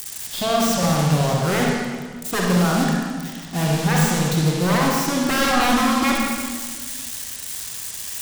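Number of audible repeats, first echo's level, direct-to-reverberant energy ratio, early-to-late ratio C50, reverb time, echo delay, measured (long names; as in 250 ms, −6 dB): no echo audible, no echo audible, −2.5 dB, −1.0 dB, 1.6 s, no echo audible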